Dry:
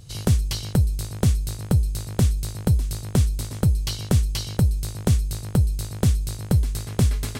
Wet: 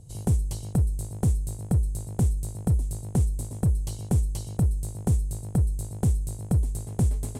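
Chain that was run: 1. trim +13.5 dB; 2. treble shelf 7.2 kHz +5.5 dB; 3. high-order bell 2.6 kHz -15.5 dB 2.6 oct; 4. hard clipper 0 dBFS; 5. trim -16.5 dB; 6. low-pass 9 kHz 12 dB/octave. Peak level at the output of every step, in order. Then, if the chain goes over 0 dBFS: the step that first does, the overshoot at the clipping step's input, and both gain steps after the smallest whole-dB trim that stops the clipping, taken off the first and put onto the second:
+7.0 dBFS, +7.5 dBFS, +6.5 dBFS, 0.0 dBFS, -16.5 dBFS, -16.0 dBFS; step 1, 6.5 dB; step 1 +6.5 dB, step 5 -9.5 dB

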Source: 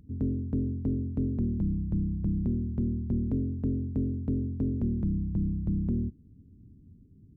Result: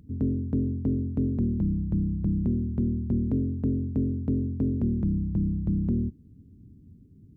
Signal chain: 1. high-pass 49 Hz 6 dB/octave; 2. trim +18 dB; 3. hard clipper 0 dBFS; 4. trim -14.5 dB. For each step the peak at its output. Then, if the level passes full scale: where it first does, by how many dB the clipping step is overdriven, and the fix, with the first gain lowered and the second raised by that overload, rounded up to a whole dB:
-20.0 dBFS, -2.0 dBFS, -2.0 dBFS, -16.5 dBFS; nothing clips

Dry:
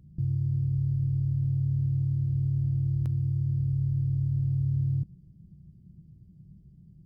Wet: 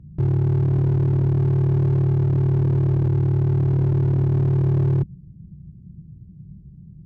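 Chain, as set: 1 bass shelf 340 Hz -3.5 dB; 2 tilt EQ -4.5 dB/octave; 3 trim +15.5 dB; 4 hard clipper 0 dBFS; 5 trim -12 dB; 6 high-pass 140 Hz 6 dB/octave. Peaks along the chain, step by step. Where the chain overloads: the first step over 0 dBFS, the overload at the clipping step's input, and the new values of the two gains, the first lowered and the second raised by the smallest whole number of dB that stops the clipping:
-23.0 dBFS, -8.0 dBFS, +7.5 dBFS, 0.0 dBFS, -12.0 dBFS, -11.0 dBFS; step 3, 7.5 dB; step 3 +7.5 dB, step 5 -4 dB

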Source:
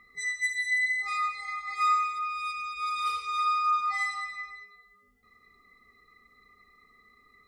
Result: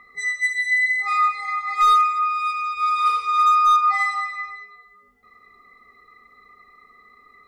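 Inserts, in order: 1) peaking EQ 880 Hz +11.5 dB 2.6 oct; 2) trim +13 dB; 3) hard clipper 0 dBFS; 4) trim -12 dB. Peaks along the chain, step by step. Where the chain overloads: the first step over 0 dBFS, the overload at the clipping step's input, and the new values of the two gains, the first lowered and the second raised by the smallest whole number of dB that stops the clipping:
-7.5 dBFS, +5.5 dBFS, 0.0 dBFS, -12.0 dBFS; step 2, 5.5 dB; step 2 +7 dB, step 4 -6 dB

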